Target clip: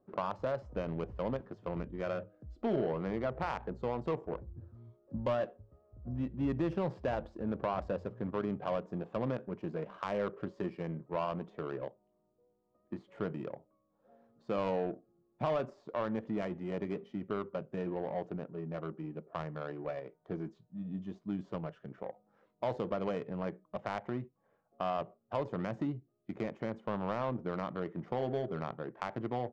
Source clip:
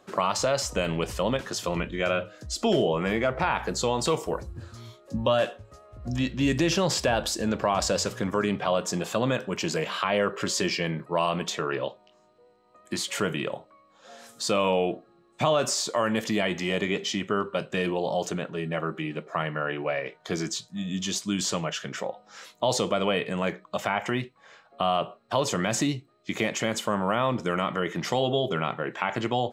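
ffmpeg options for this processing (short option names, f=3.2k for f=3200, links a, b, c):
-af "adynamicsmooth=sensitivity=0.5:basefreq=520,volume=-8dB"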